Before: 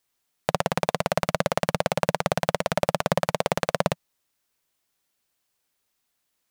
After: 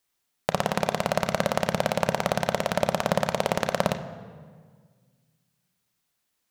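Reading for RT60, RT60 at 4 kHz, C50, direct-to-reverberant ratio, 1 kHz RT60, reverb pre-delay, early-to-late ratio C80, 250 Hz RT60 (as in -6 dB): 1.7 s, 1.2 s, 11.5 dB, 8.5 dB, 1.6 s, 3 ms, 12.5 dB, 2.0 s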